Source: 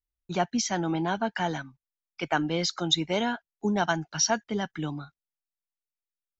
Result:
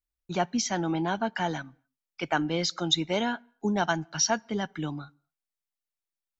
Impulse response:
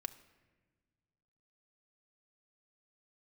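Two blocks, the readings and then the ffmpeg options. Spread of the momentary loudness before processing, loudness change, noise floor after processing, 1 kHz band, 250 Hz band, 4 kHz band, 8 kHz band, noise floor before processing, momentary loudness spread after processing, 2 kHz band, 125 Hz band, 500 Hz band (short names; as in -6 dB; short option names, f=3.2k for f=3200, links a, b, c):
10 LU, -0.5 dB, under -85 dBFS, -0.5 dB, -0.5 dB, -0.5 dB, n/a, under -85 dBFS, 10 LU, -0.5 dB, -0.5 dB, -0.5 dB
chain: -filter_complex "[0:a]asplit=2[a][b];[1:a]atrim=start_sample=2205,afade=t=out:st=0.31:d=0.01,atrim=end_sample=14112[c];[b][c]afir=irnorm=-1:irlink=0,volume=-11.5dB[d];[a][d]amix=inputs=2:normalize=0,volume=-2dB"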